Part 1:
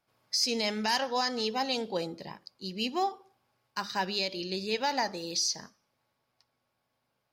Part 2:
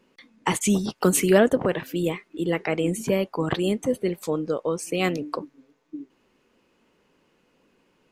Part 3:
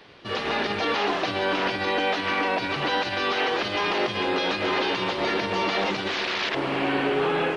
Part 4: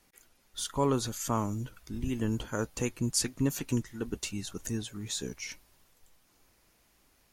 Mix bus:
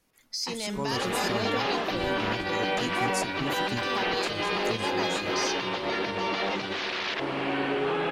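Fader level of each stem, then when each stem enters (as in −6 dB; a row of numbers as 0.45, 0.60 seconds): −4.5, −15.5, −4.0, −5.5 decibels; 0.00, 0.00, 0.65, 0.00 seconds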